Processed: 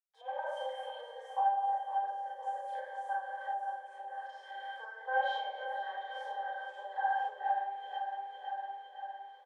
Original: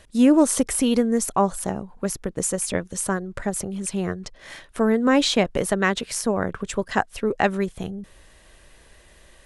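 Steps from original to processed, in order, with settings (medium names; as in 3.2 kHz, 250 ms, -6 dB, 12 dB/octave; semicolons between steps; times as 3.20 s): send-on-delta sampling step -41.5 dBFS; Schroeder reverb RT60 0.94 s, combs from 29 ms, DRR -7.5 dB; de-esser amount 80%; pitch-class resonator G, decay 0.19 s; feedback delay 509 ms, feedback 52%, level -8 dB; compression 3:1, threshold -29 dBFS, peak gain reduction 11 dB; Chebyshev high-pass 520 Hz, order 8; trim +7 dB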